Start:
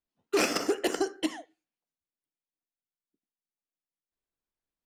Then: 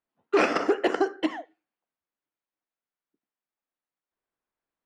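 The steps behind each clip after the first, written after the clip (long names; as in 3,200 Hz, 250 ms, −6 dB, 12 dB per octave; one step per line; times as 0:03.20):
low-pass filter 1,400 Hz 12 dB per octave
spectral tilt +3 dB per octave
level +8.5 dB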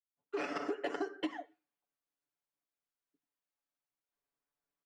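fade in at the beginning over 1.13 s
comb filter 7 ms, depth 90%
downward compressor 5 to 1, threshold −26 dBFS, peak gain reduction 9 dB
level −7 dB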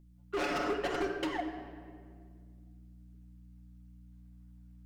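hard clipping −38.5 dBFS, distortion −6 dB
mains hum 60 Hz, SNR 17 dB
on a send at −3 dB: convolution reverb RT60 2.0 s, pre-delay 5 ms
on the sum: level +7.5 dB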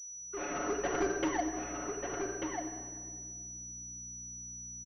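fade in at the beginning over 1.12 s
single-tap delay 1,191 ms −5.5 dB
switching amplifier with a slow clock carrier 5,900 Hz
level +2.5 dB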